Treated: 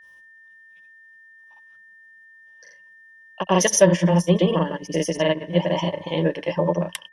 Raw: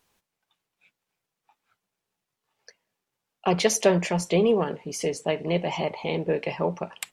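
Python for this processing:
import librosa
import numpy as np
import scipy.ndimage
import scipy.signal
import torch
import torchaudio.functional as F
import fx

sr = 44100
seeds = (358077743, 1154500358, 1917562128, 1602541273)

y = fx.granulator(x, sr, seeds[0], grain_ms=100.0, per_s=23.0, spray_ms=100.0, spread_st=0)
y = fx.ripple_eq(y, sr, per_octave=1.2, db=12)
y = y + 10.0 ** (-51.0 / 20.0) * np.sin(2.0 * np.pi * 1800.0 * np.arange(len(y)) / sr)
y = fx.transient(y, sr, attack_db=0, sustain_db=-4)
y = y * 10.0 ** (4.0 / 20.0)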